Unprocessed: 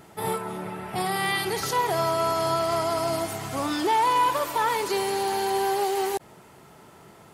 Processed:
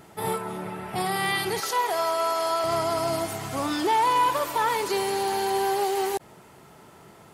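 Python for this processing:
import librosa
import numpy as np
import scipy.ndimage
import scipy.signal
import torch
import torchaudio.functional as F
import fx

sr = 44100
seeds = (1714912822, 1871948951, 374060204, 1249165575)

y = fx.highpass(x, sr, hz=450.0, slope=12, at=(1.6, 2.64))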